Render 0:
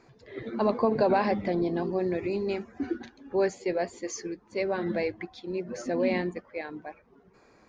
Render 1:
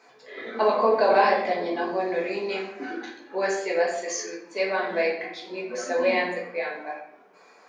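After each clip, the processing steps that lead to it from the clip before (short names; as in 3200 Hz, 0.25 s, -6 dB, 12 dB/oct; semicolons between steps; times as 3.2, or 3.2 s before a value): HPF 600 Hz 12 dB/oct; shoebox room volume 170 m³, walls mixed, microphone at 1.5 m; gain +3.5 dB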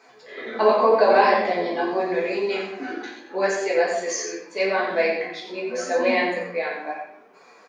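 echo 89 ms -8 dB; flange 0.81 Hz, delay 7 ms, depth 7.7 ms, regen +47%; gain +6.5 dB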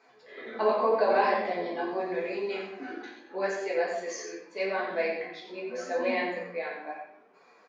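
air absorption 74 m; gain -7.5 dB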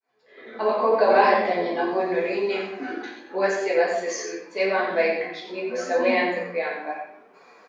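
opening faded in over 1.25 s; gain +7.5 dB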